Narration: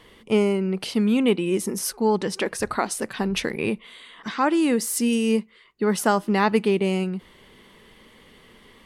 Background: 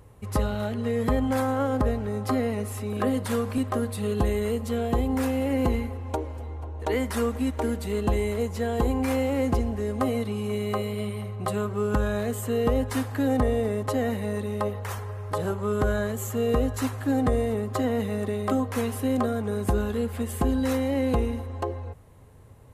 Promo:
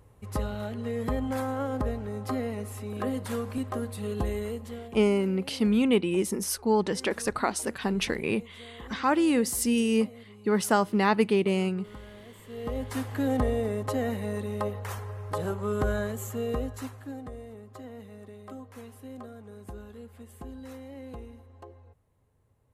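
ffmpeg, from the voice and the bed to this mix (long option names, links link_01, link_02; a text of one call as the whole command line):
ffmpeg -i stem1.wav -i stem2.wav -filter_complex "[0:a]adelay=4650,volume=-3dB[link_01];[1:a]volume=12.5dB,afade=type=out:start_time=4.38:duration=0.59:silence=0.16788,afade=type=in:start_time=12.45:duration=0.68:silence=0.125893,afade=type=out:start_time=15.98:duration=1.26:silence=0.177828[link_02];[link_01][link_02]amix=inputs=2:normalize=0" out.wav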